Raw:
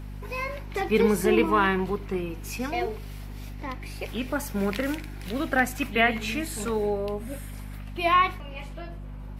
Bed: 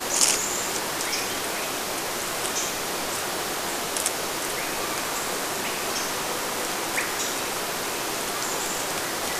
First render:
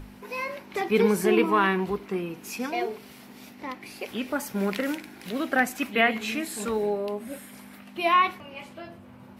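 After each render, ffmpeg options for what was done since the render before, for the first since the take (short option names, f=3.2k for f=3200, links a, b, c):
-af "bandreject=f=50:t=h:w=6,bandreject=f=100:t=h:w=6,bandreject=f=150:t=h:w=6"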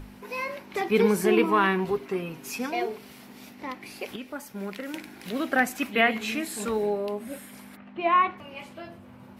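-filter_complex "[0:a]asettb=1/sr,asplit=3[a][b][c];[a]atrim=end=1.844[d];[b]atrim=start=1.84:end=2.6,asetpts=PTS-STARTPTS,afade=t=in:d=0.004:c=qsin,afade=t=out:st=0.756:d=0.004:c=qsin,aecho=1:1:7.4:0.54,atrim=end_sample=33516[e];[c]atrim=start=2.596[f];[d][e]acrossfade=d=0.004:c1=hsin:c2=qsin[g];[g][f]acrossfade=d=0.004:c1=qsin:c2=hsin,asplit=3[h][i][j];[h]afade=t=out:st=7.75:d=0.02[k];[i]lowpass=2k,afade=t=in:st=7.75:d=0.02,afade=t=out:st=8.37:d=0.02[l];[j]afade=t=in:st=8.37:d=0.02[m];[k][l][m]amix=inputs=3:normalize=0,asplit=3[n][o][p];[n]atrim=end=4.162[q];[o]atrim=start=4.158:end=4.942,asetpts=PTS-STARTPTS,volume=-8dB[r];[p]atrim=start=4.938[s];[q][r]acrossfade=d=0.004:c1=hsin:c2=hsin[t];[t][s]acrossfade=d=0.004:c1=hsin:c2=hsin"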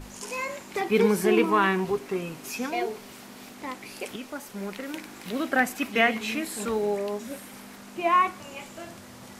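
-filter_complex "[1:a]volume=-21dB[a];[0:a][a]amix=inputs=2:normalize=0"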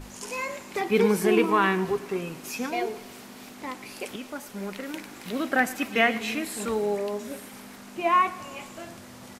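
-af "aecho=1:1:112|224|336|448|560:0.112|0.0662|0.0391|0.023|0.0136"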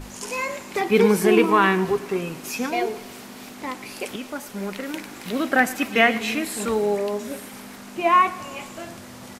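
-af "volume=4.5dB"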